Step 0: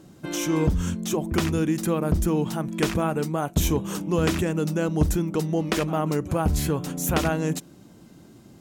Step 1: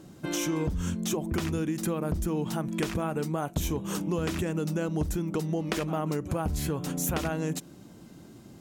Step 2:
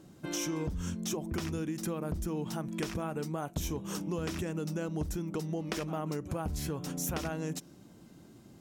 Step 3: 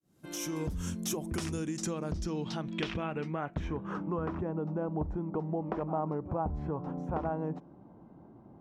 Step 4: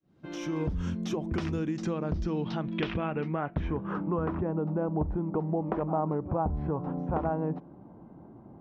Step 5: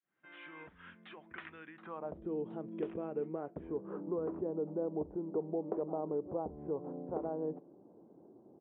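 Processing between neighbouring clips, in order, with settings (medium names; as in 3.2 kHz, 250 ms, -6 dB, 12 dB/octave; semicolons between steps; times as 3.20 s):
compression, threshold -26 dBFS, peak gain reduction 10.5 dB
dynamic bell 5.5 kHz, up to +6 dB, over -57 dBFS, Q 4.3; trim -5.5 dB
fade-in on the opening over 0.62 s; low-pass sweep 12 kHz -> 900 Hz, 1.15–4.50 s
distance through air 240 m; trim +4.5 dB
band-pass sweep 1.8 kHz -> 430 Hz, 1.69–2.26 s; resampled via 8 kHz; trim -1.5 dB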